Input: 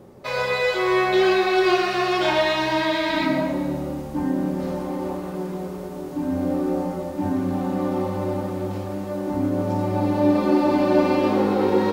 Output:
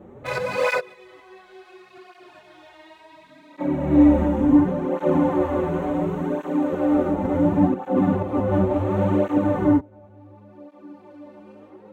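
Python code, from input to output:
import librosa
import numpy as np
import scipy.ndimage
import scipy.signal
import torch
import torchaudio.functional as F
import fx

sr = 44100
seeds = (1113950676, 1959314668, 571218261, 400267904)

y = fx.wiener(x, sr, points=9)
y = fx.highpass(y, sr, hz=fx.line((6.13, 1400.0), (6.72, 690.0)), slope=6, at=(6.13, 6.72), fade=0.02)
y = fx.gate_flip(y, sr, shuts_db=-15.0, range_db=-35)
y = fx.rev_gated(y, sr, seeds[0], gate_ms=440, shape='rising', drr_db=-7.0)
y = fx.flanger_cancel(y, sr, hz=0.7, depth_ms=7.8)
y = y * librosa.db_to_amplitude(4.5)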